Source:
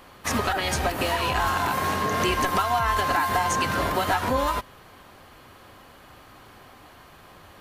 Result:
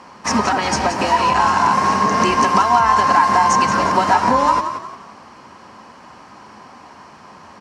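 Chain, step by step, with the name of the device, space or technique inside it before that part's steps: car door speaker (speaker cabinet 99–8000 Hz, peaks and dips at 110 Hz -5 dB, 210 Hz +9 dB, 950 Hz +10 dB, 3500 Hz -8 dB, 5400 Hz +8 dB); frequency-shifting echo 0.177 s, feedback 35%, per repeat +38 Hz, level -9.5 dB; gain +4.5 dB

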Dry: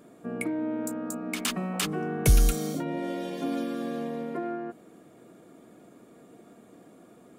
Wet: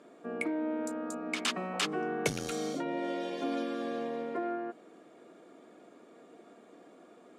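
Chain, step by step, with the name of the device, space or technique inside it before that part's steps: public-address speaker with an overloaded transformer (core saturation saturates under 110 Hz; BPF 320–5900 Hz)

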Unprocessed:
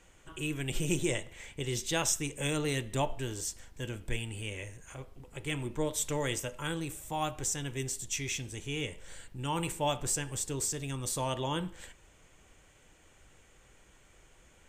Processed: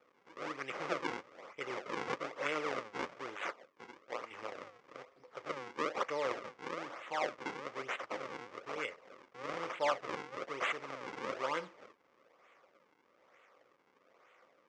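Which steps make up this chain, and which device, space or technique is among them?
3.35–4.3 HPF 1000 Hz -> 400 Hz 6 dB/oct; circuit-bent sampling toy (decimation with a swept rate 41×, swing 160% 1.1 Hz; speaker cabinet 420–5900 Hz, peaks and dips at 530 Hz +8 dB, 1200 Hz +10 dB, 2100 Hz +7 dB, 4100 Hz -5 dB); gain -4.5 dB

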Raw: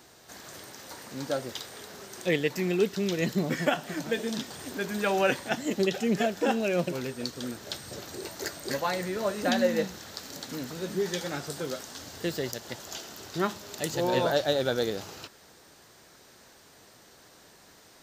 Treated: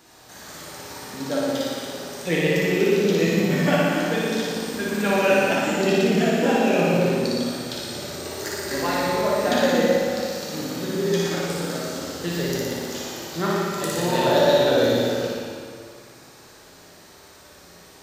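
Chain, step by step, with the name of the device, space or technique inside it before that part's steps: tunnel (flutter echo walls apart 10 m, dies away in 1.3 s; reverb RT60 2.3 s, pre-delay 6 ms, DRR -2.5 dB)

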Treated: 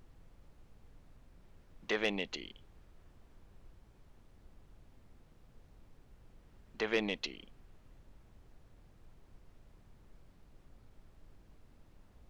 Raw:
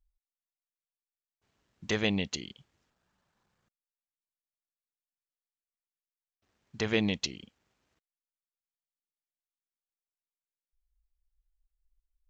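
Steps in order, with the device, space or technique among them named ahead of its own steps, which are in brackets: aircraft cabin announcement (BPF 360–3100 Hz; soft clip -19 dBFS, distortion -18 dB; brown noise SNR 11 dB)

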